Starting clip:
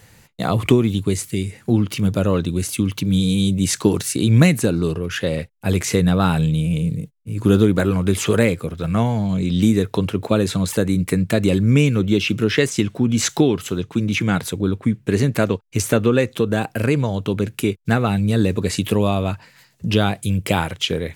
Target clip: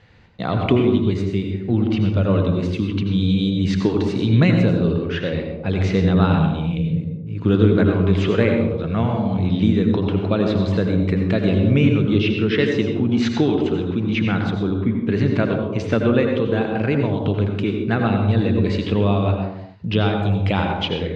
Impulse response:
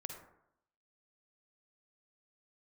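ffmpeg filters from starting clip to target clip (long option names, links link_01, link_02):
-filter_complex "[0:a]lowpass=frequency=4000:width=0.5412,lowpass=frequency=4000:width=1.3066[link_01];[1:a]atrim=start_sample=2205,afade=type=out:start_time=0.31:duration=0.01,atrim=end_sample=14112,asetrate=26019,aresample=44100[link_02];[link_01][link_02]afir=irnorm=-1:irlink=0,volume=-1dB"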